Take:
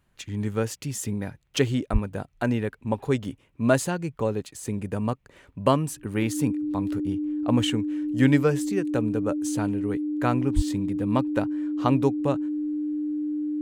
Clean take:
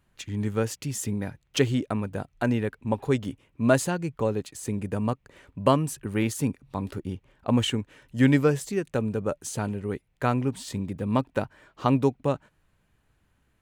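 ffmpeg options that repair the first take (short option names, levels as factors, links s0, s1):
-filter_complex "[0:a]bandreject=f=300:w=30,asplit=3[s0][s1][s2];[s0]afade=t=out:st=1.92:d=0.02[s3];[s1]highpass=f=140:w=0.5412,highpass=f=140:w=1.3066,afade=t=in:st=1.92:d=0.02,afade=t=out:st=2.04:d=0.02[s4];[s2]afade=t=in:st=2.04:d=0.02[s5];[s3][s4][s5]amix=inputs=3:normalize=0,asplit=3[s6][s7][s8];[s6]afade=t=out:st=10.55:d=0.02[s9];[s7]highpass=f=140:w=0.5412,highpass=f=140:w=1.3066,afade=t=in:st=10.55:d=0.02,afade=t=out:st=10.67:d=0.02[s10];[s8]afade=t=in:st=10.67:d=0.02[s11];[s9][s10][s11]amix=inputs=3:normalize=0"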